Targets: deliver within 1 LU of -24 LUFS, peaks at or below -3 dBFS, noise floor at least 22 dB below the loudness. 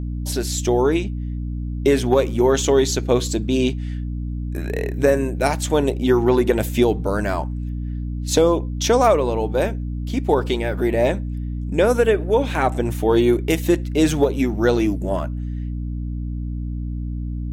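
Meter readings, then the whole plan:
hum 60 Hz; highest harmonic 300 Hz; hum level -24 dBFS; loudness -20.5 LUFS; peak level -3.0 dBFS; loudness target -24.0 LUFS
-> de-hum 60 Hz, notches 5; trim -3.5 dB

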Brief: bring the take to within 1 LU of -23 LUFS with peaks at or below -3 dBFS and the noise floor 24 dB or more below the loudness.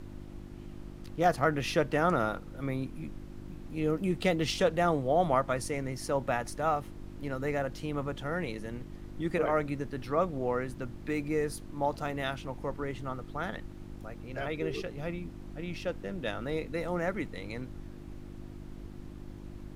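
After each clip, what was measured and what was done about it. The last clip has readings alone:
hum 50 Hz; highest harmonic 350 Hz; hum level -44 dBFS; noise floor -46 dBFS; noise floor target -57 dBFS; loudness -32.5 LUFS; peak level -12.0 dBFS; loudness target -23.0 LUFS
-> de-hum 50 Hz, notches 7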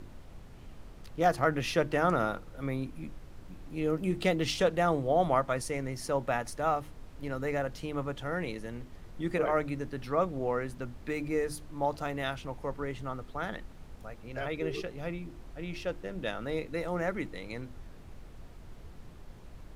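hum not found; noise floor -49 dBFS; noise floor target -57 dBFS
-> noise print and reduce 8 dB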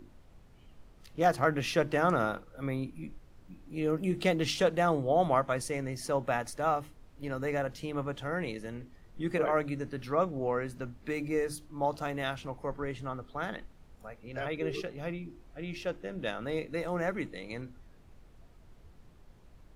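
noise floor -57 dBFS; loudness -32.5 LUFS; peak level -13.0 dBFS; loudness target -23.0 LUFS
-> trim +9.5 dB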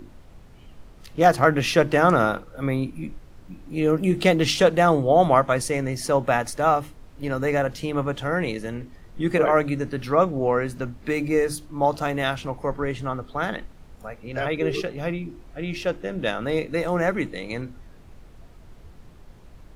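loudness -23.0 LUFS; peak level -3.5 dBFS; noise floor -48 dBFS

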